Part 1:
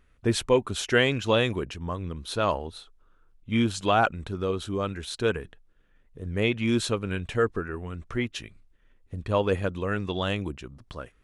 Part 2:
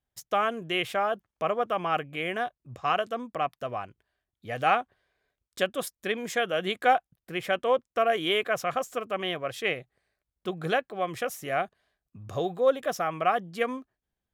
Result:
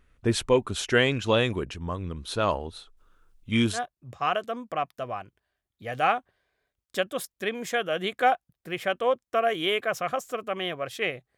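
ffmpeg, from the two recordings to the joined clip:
ffmpeg -i cue0.wav -i cue1.wav -filter_complex "[0:a]asettb=1/sr,asplit=3[link_01][link_02][link_03];[link_01]atrim=end=2.974[link_04];[link_02]atrim=start=2.97:end=3.8,asetpts=PTS-STARTPTS,afade=type=in:duration=0.004:curve=qsin,afade=type=out:start_time=0.826:duration=0.004:curve=qsin,highshelf=frequency=3400:gain=10[link_05];[link_03]atrim=start=3.796[link_06];[link_04][link_05]acrossfade=duration=0.004:curve1=hsin:curve2=qsin[link_07];[link_07][link_06]acrossfade=duration=0.004:curve1=qsin:curve2=hsin,apad=whole_dur=11.37,atrim=end=11.37,atrim=end=3.8,asetpts=PTS-STARTPTS[link_08];[1:a]atrim=start=2.33:end=10,asetpts=PTS-STARTPTS[link_09];[link_08][link_09]acrossfade=duration=0.1:curve1=tri:curve2=tri" out.wav

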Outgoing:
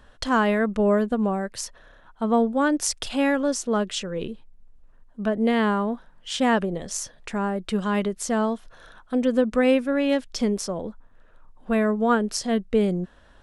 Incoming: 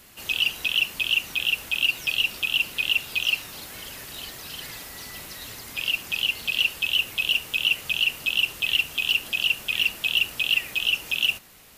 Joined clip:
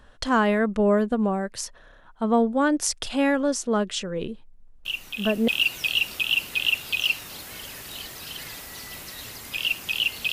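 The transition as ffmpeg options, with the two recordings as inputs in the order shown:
ffmpeg -i cue0.wav -i cue1.wav -filter_complex "[1:a]asplit=2[link_01][link_02];[0:a]apad=whole_dur=10.32,atrim=end=10.32,atrim=end=5.482[link_03];[link_02]atrim=start=1.708:end=6.55[link_04];[link_01]atrim=start=1.08:end=1.71,asetpts=PTS-STARTPTS,volume=-7.5dB,afade=type=in:duration=0.004:curve=hsin,afade=type=out:start_time=0.626:duration=0.004:curve=hsin,adelay=213885S[link_05];[link_03][link_04]acrossfade=duration=0.004:curve1=hsin:curve2=hsin[link_06];[link_06][link_05]amix=inputs=2:normalize=0" out.wav

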